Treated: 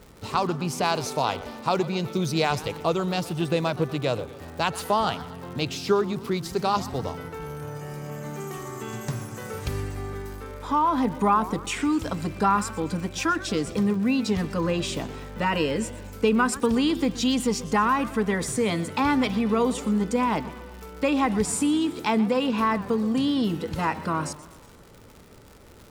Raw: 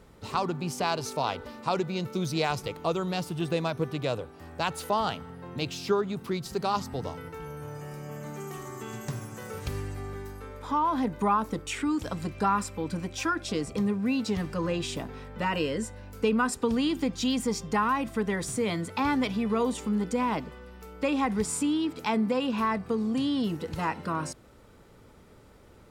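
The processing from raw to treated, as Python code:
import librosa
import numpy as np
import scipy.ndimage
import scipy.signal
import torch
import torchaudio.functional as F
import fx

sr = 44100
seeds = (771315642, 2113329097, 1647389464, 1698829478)

y = fx.dmg_crackle(x, sr, seeds[0], per_s=150.0, level_db=-42.0)
y = fx.echo_warbled(y, sr, ms=123, feedback_pct=54, rate_hz=2.8, cents=203, wet_db=-17)
y = F.gain(torch.from_numpy(y), 4.0).numpy()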